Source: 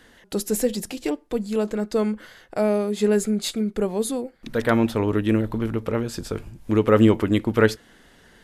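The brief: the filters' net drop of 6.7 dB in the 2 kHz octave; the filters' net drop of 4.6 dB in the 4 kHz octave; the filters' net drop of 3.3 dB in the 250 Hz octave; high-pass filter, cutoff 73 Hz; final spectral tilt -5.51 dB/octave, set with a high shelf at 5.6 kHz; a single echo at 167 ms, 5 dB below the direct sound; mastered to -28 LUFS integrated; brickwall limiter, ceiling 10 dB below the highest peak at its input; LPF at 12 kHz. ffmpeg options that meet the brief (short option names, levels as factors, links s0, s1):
-af "highpass=73,lowpass=12000,equalizer=f=250:t=o:g=-4,equalizer=f=2000:t=o:g=-9,equalizer=f=4000:t=o:g=-5,highshelf=f=5600:g=5,alimiter=limit=0.158:level=0:latency=1,aecho=1:1:167:0.562,volume=0.891"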